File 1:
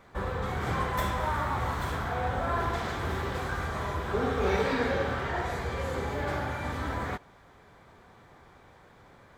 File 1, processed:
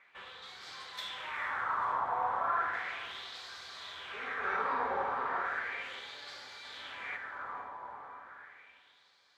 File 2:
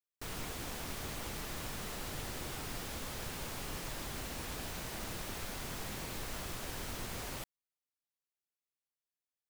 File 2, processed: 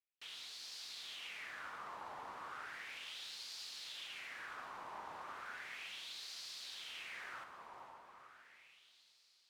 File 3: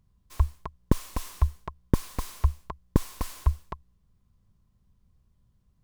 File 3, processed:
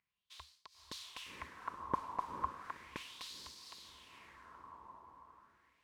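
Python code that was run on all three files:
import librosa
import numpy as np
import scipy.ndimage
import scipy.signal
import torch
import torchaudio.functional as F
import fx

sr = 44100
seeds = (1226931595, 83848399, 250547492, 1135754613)

y = fx.echo_diffused(x, sr, ms=474, feedback_pct=56, wet_db=-6.0)
y = fx.filter_lfo_bandpass(y, sr, shape='sine', hz=0.35, low_hz=950.0, high_hz=4500.0, q=3.4)
y = y * librosa.db_to_amplitude(4.0)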